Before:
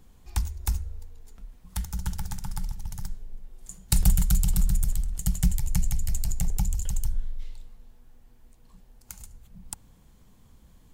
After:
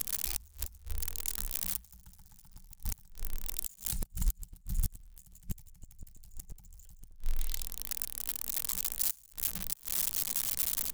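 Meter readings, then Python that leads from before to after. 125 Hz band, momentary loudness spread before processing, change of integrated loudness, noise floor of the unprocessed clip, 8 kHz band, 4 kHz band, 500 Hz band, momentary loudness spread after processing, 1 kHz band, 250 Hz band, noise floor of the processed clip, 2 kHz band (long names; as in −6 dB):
−14.5 dB, 21 LU, −4.5 dB, −56 dBFS, −0.5 dB, +0.5 dB, −3.0 dB, 16 LU, −8.0 dB, −15.5 dB, −59 dBFS, −1.5 dB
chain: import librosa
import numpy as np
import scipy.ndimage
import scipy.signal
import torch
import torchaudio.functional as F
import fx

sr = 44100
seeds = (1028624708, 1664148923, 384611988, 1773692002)

y = x + 0.5 * 10.0 ** (-22.0 / 20.0) * np.diff(np.sign(x), prepend=np.sign(x[:1]))
y = fx.over_compress(y, sr, threshold_db=-24.0, ratio=-0.5)
y = fx.gate_flip(y, sr, shuts_db=-19.0, range_db=-28)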